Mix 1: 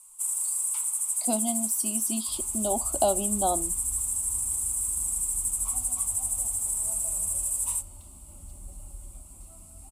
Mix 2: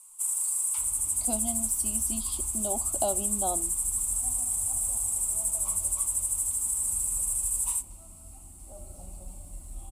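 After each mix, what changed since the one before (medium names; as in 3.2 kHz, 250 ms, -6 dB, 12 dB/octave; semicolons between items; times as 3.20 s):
speech -5.5 dB; second sound: entry -1.50 s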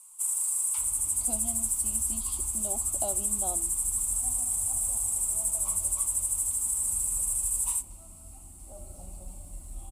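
speech -6.5 dB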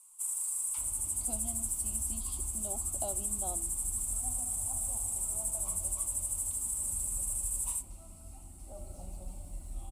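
speech -4.5 dB; first sound -6.0 dB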